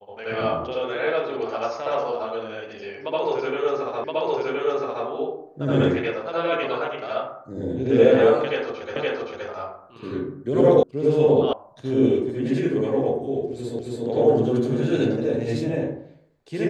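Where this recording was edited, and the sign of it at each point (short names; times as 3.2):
4.04 repeat of the last 1.02 s
8.96 repeat of the last 0.52 s
10.83 sound cut off
11.53 sound cut off
13.79 repeat of the last 0.27 s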